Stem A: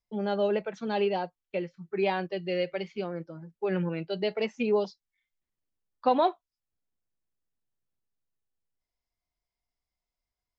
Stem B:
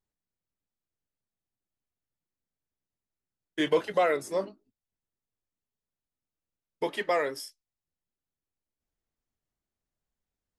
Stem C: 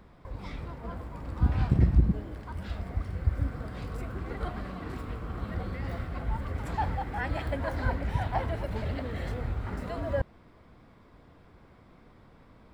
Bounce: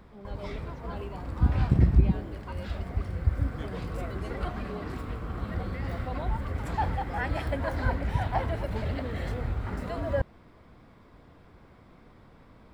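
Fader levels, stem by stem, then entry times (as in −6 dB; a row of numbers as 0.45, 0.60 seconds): −16.0, −19.0, +1.5 decibels; 0.00, 0.00, 0.00 seconds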